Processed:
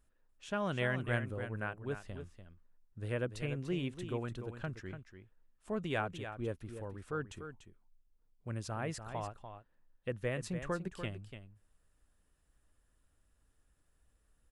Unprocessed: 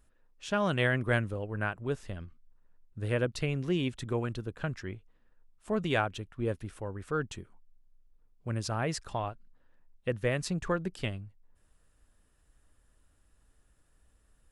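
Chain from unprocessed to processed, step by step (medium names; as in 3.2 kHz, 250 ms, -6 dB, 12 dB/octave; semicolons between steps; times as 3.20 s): dynamic bell 4.8 kHz, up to -5 dB, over -54 dBFS, Q 1.7; on a send: delay 292 ms -9.5 dB; on the sum: trim -6.5 dB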